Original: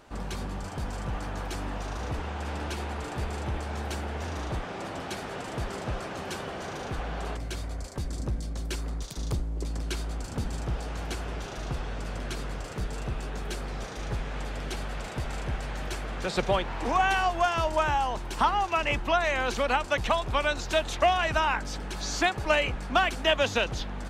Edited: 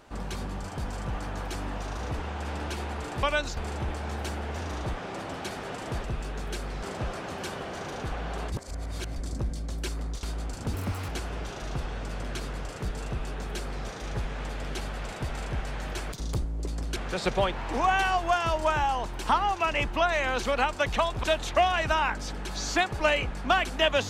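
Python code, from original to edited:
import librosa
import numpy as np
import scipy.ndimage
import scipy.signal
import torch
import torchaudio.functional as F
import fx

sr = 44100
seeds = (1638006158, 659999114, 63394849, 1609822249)

y = fx.edit(x, sr, fx.reverse_span(start_s=7.39, length_s=0.64),
    fx.move(start_s=9.1, length_s=0.84, to_s=16.08),
    fx.speed_span(start_s=10.44, length_s=0.6, speed=1.69),
    fx.duplicate(start_s=13.02, length_s=0.79, to_s=5.7),
    fx.move(start_s=20.35, length_s=0.34, to_s=3.23), tone=tone)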